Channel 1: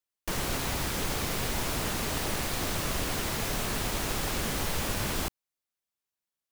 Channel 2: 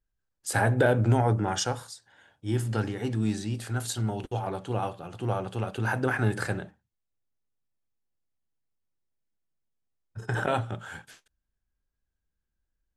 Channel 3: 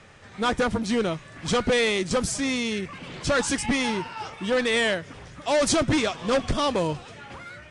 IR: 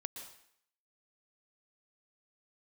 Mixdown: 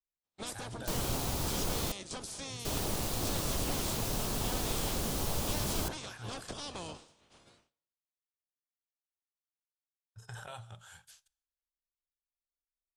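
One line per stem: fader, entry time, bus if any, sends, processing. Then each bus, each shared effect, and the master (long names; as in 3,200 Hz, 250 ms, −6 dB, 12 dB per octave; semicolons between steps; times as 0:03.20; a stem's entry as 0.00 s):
−2.0 dB, 0.60 s, muted 0:01.92–0:02.65, no bus, no send, no processing
−1.5 dB, 0.00 s, bus A, send −23 dB, guitar amp tone stack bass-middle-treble 10-0-10
−10.0 dB, 0.00 s, bus A, send −18 dB, ceiling on every frequency bin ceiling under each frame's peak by 21 dB; downward expander −33 dBFS
bus A: 0.0 dB, noise gate with hold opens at −57 dBFS; downward compressor 6 to 1, threshold −38 dBFS, peak gain reduction 11.5 dB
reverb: on, RT60 0.65 s, pre-delay 111 ms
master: parametric band 1,900 Hz −10 dB 1.2 octaves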